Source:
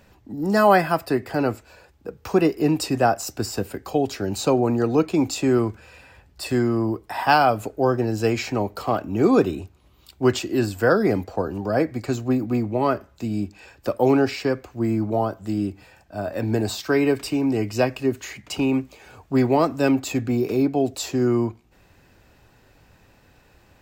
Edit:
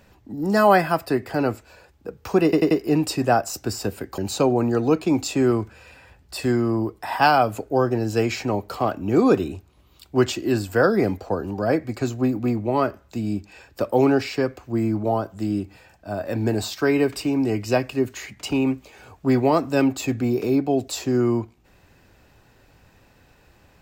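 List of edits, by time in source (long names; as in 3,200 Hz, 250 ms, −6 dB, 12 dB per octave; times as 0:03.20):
0:02.44: stutter 0.09 s, 4 plays
0:03.91–0:04.25: remove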